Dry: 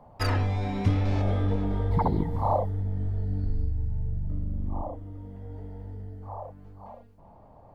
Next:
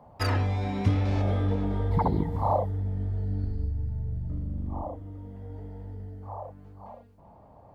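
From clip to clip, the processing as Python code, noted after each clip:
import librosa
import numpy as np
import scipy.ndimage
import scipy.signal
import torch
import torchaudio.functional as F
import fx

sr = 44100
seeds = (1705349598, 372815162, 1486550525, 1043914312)

y = scipy.signal.sosfilt(scipy.signal.butter(2, 40.0, 'highpass', fs=sr, output='sos'), x)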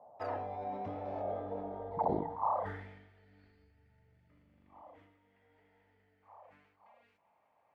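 y = fx.filter_sweep_bandpass(x, sr, from_hz=670.0, to_hz=2300.0, start_s=2.2, end_s=2.88, q=3.0)
y = fx.sustainer(y, sr, db_per_s=55.0)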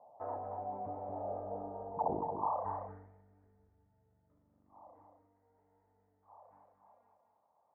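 y = fx.ladder_lowpass(x, sr, hz=1200.0, resonance_pct=35)
y = y + 10.0 ** (-6.5 / 20.0) * np.pad(y, (int(228 * sr / 1000.0), 0))[:len(y)]
y = y * librosa.db_to_amplitude(2.0)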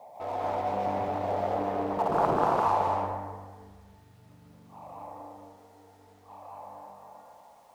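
y = fx.law_mismatch(x, sr, coded='mu')
y = fx.rev_plate(y, sr, seeds[0], rt60_s=1.4, hf_ratio=0.6, predelay_ms=120, drr_db=-4.5)
y = fx.doppler_dist(y, sr, depth_ms=0.63)
y = y * librosa.db_to_amplitude(3.0)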